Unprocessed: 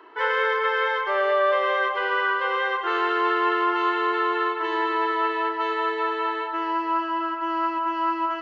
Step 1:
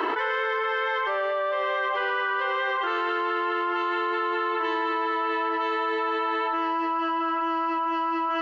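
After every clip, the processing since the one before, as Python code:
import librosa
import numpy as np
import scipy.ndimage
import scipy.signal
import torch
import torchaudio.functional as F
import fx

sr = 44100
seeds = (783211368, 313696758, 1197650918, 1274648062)

y = fx.env_flatten(x, sr, amount_pct=100)
y = y * 10.0 ** (-7.0 / 20.0)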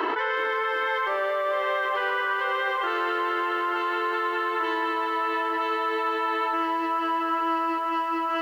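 y = x + 10.0 ** (-23.0 / 20.0) * np.pad(x, (int(497 * sr / 1000.0), 0))[:len(x)]
y = fx.echo_crushed(y, sr, ms=363, feedback_pct=80, bits=8, wet_db=-14.0)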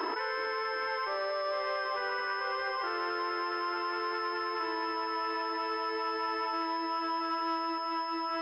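y = fx.echo_wet_highpass(x, sr, ms=706, feedback_pct=76, hz=1800.0, wet_db=-15.0)
y = fx.pwm(y, sr, carrier_hz=5200.0)
y = y * 10.0 ** (-7.0 / 20.0)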